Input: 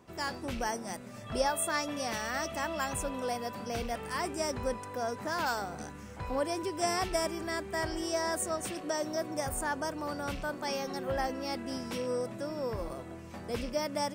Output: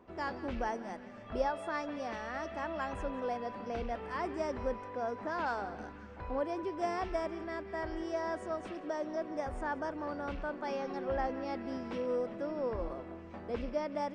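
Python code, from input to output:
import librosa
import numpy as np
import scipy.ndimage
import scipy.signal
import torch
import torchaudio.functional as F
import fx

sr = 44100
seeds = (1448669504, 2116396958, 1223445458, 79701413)

p1 = fx.peak_eq(x, sr, hz=130.0, db=-14.5, octaves=0.7)
p2 = fx.rider(p1, sr, range_db=3, speed_s=2.0)
p3 = fx.spacing_loss(p2, sr, db_at_10k=32)
y = p3 + fx.echo_banded(p3, sr, ms=179, feedback_pct=78, hz=2500.0, wet_db=-13.0, dry=0)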